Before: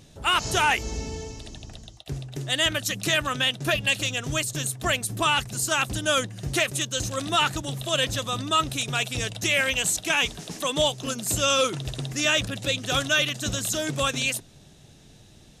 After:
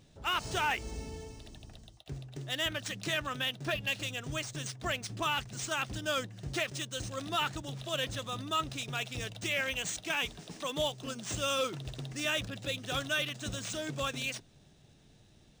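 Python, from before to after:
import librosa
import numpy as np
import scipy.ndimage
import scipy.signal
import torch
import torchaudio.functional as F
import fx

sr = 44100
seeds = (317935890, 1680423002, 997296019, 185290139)

y = np.interp(np.arange(len(x)), np.arange(len(x))[::3], x[::3])
y = y * 10.0 ** (-9.0 / 20.0)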